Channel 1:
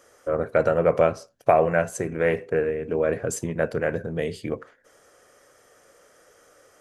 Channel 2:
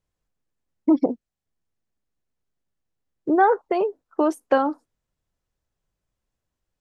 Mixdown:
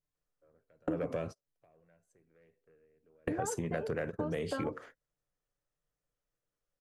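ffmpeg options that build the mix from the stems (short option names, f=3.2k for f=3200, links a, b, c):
-filter_complex "[0:a]acrossover=split=380|3000[a][b][c];[b]acompressor=threshold=-26dB:ratio=6[d];[a][d][c]amix=inputs=3:normalize=0,aeval=exprs='0.376*(cos(1*acos(clip(val(0)/0.376,-1,1)))-cos(1*PI/2))+0.0473*(cos(5*acos(clip(val(0)/0.376,-1,1)))-cos(5*PI/2))':c=same,adelay=150,volume=-1.5dB[e];[1:a]aecho=1:1:6.8:0.88,volume=-12.5dB,asplit=2[f][g];[g]apad=whole_len=306809[h];[e][h]sidechaingate=range=-43dB:threshold=-58dB:ratio=16:detection=peak[i];[i][f]amix=inputs=2:normalize=0,acompressor=threshold=-31dB:ratio=12"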